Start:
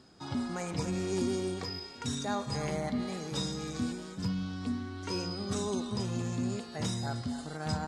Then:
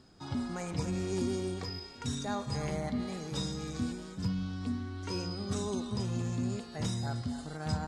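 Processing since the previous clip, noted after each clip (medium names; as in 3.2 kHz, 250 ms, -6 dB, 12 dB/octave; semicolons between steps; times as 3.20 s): bass shelf 86 Hz +11 dB; trim -2.5 dB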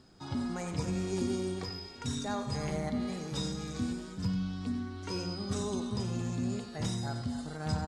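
delay 91 ms -10.5 dB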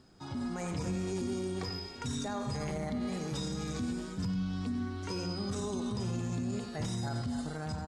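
peaking EQ 4.1 kHz -2 dB; peak limiter -30 dBFS, peak gain reduction 10 dB; level rider gain up to 4 dB; trim -1 dB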